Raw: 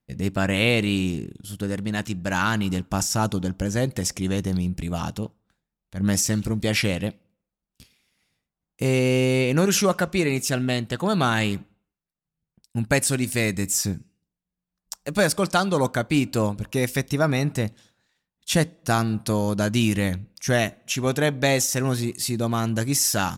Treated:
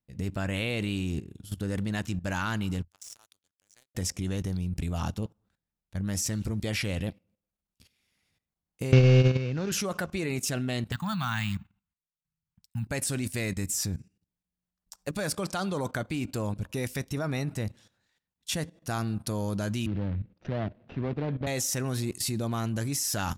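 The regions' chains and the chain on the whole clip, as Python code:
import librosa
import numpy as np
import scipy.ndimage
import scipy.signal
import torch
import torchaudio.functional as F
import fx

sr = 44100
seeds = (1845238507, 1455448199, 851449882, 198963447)

y = fx.chain(x, sr, fx.lowpass(hz=9400.0, slope=12),
    fx.differentiator(),
    fx.power_curve(exponent=2.0), at=(2.83, 3.95))
y = fx.chain(y, sr, fx.cvsd(bps=32000),
    fx.peak_eq(hz=120.0, db=10.5, octaves=0.39),
    fx.band_squash(depth_pct=70), at=(8.92, 9.72))
y = fx.chain(y, sr, fx.cheby1_bandstop(low_hz=190.0, high_hz=980.0, order=2),
    fx.resample_bad(factor=2, down='filtered', up='hold'), at=(10.92, 12.87))
y = fx.chain(y, sr, fx.median_filter(points=41),
    fx.lowpass(hz=3900.0, slope=24),
    fx.band_squash(depth_pct=40), at=(19.86, 21.47))
y = fx.peak_eq(y, sr, hz=84.0, db=8.0, octaves=0.53)
y = fx.level_steps(y, sr, step_db=15)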